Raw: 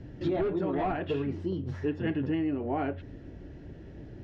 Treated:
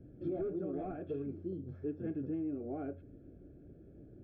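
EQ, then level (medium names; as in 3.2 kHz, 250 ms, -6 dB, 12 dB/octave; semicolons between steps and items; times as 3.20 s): boxcar filter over 46 samples; bass shelf 220 Hz -10.5 dB; -2.5 dB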